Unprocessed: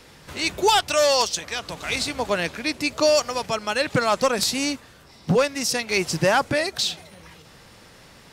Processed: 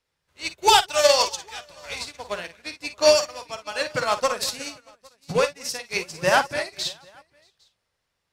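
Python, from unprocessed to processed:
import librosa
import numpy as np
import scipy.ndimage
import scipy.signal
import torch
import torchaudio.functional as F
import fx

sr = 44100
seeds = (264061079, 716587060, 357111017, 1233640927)

p1 = fx.peak_eq(x, sr, hz=230.0, db=-8.0, octaves=1.7)
p2 = p1 + fx.echo_multitap(p1, sr, ms=(44, 56, 58, 215, 634, 806), db=(-9.5, -7.0, -18.0, -14.5, -14.0, -12.0), dry=0)
p3 = fx.upward_expand(p2, sr, threshold_db=-38.0, expansion=2.5)
y = p3 * librosa.db_to_amplitude(4.0)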